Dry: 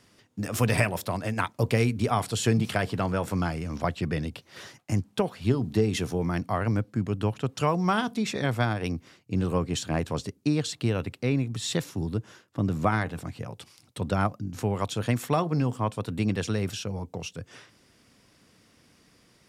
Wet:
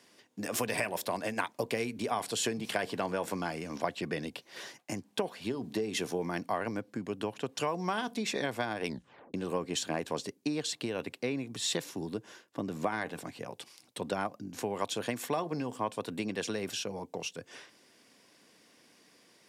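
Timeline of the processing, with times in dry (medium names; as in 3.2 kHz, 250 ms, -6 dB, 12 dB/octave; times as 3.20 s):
8.85 s: tape stop 0.49 s
whole clip: compression, threshold -25 dBFS; high-pass 280 Hz 12 dB/octave; band-stop 1.3 kHz, Q 7.8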